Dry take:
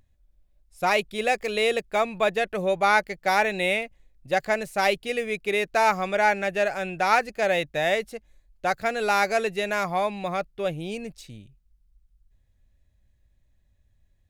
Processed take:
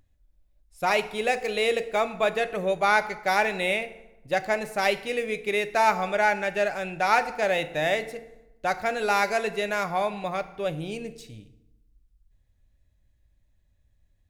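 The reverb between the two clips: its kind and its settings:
feedback delay network reverb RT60 0.94 s, low-frequency decay 1.2×, high-frequency decay 0.7×, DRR 10 dB
level −1.5 dB

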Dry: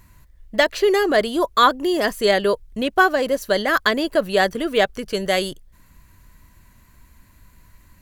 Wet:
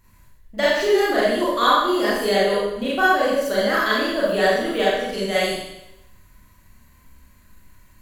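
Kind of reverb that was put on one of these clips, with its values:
four-comb reverb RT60 0.9 s, combs from 30 ms, DRR −8.5 dB
level −9.5 dB

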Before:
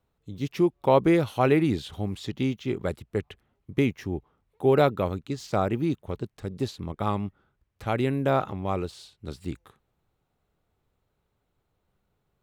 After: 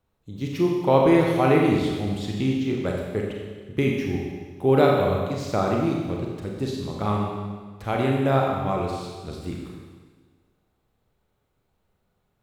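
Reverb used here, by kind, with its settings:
four-comb reverb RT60 1.5 s, combs from 30 ms, DRR −1 dB

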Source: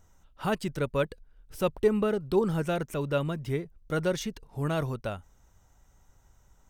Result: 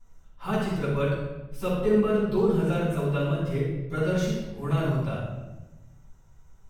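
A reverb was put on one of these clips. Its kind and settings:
rectangular room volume 520 cubic metres, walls mixed, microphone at 9.2 metres
level −15.5 dB

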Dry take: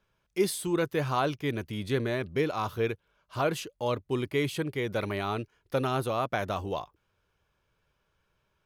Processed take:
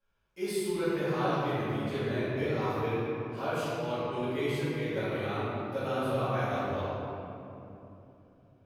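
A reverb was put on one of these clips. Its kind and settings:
rectangular room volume 130 cubic metres, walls hard, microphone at 2.2 metres
level −16.5 dB

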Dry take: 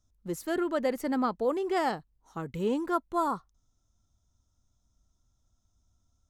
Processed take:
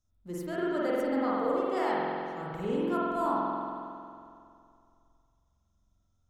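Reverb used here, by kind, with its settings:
spring reverb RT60 2.4 s, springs 45 ms, chirp 60 ms, DRR −7 dB
level −7.5 dB

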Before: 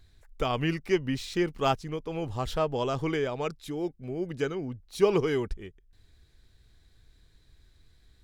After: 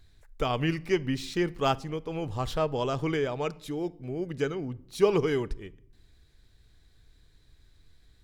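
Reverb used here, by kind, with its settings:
rectangular room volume 1,900 cubic metres, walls furnished, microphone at 0.36 metres

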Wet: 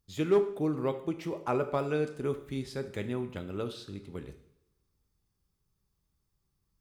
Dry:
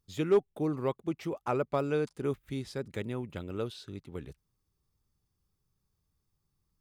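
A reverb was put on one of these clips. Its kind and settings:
coupled-rooms reverb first 0.62 s, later 1.7 s, from −21 dB, DRR 7 dB

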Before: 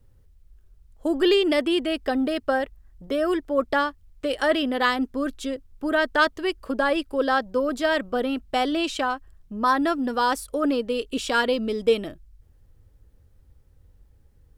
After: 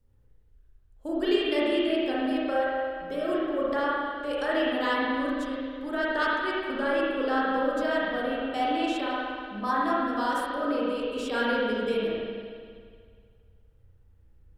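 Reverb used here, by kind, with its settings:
spring reverb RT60 2 s, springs 34/59 ms, chirp 70 ms, DRR −7 dB
level −11 dB

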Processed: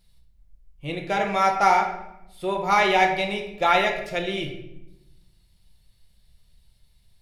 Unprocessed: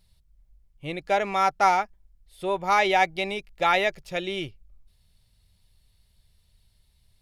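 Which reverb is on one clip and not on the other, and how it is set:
rectangular room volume 300 cubic metres, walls mixed, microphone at 0.85 metres

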